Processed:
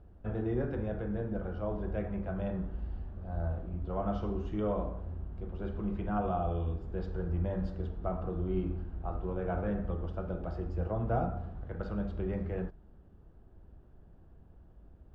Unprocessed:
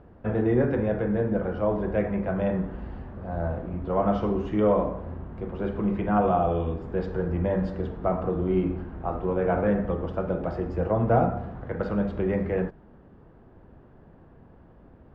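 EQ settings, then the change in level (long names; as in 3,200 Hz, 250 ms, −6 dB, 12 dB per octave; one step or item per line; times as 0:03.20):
graphic EQ with 10 bands 125 Hz −9 dB, 250 Hz −10 dB, 500 Hz −10 dB, 1,000 Hz −11 dB, 2,000 Hz −11 dB
dynamic equaliser 1,200 Hz, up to +3 dB, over −55 dBFS, Q 1.4
high-shelf EQ 2,300 Hz −8.5 dB
+2.5 dB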